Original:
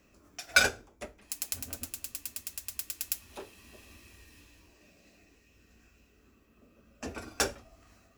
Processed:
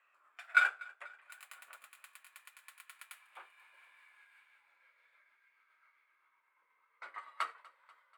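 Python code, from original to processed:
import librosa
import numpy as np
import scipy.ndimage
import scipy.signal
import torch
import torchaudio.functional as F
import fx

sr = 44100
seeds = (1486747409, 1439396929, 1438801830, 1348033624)

p1 = fx.pitch_glide(x, sr, semitones=-4.0, runs='starting unshifted')
p2 = fx.high_shelf_res(p1, sr, hz=6600.0, db=7.0, q=3.0)
p3 = 10.0 ** (-22.0 / 20.0) * np.tanh(p2 / 10.0 ** (-22.0 / 20.0))
p4 = p2 + (p3 * 10.0 ** (-3.0 / 20.0))
p5 = fx.ladder_highpass(p4, sr, hz=1000.0, resonance_pct=35)
p6 = fx.air_absorb(p5, sr, metres=440.0)
p7 = p6 + fx.echo_feedback(p6, sr, ms=243, feedback_pct=58, wet_db=-22.5, dry=0)
y = p7 * 10.0 ** (4.0 / 20.0)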